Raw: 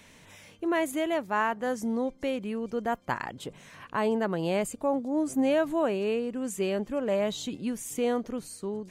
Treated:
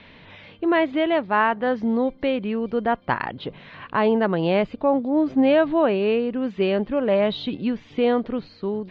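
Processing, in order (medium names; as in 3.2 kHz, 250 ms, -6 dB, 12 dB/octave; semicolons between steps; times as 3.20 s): steep low-pass 4.2 kHz 48 dB/octave; trim +7.5 dB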